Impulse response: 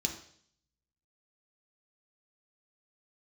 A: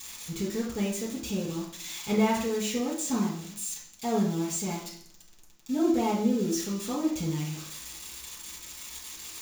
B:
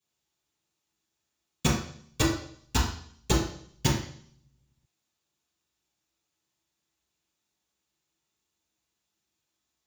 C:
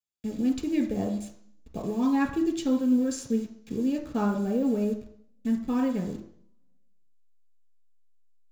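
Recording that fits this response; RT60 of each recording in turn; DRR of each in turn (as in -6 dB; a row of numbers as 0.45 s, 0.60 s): C; 0.60 s, 0.60 s, 0.60 s; -7.5 dB, -12.0 dB, 2.5 dB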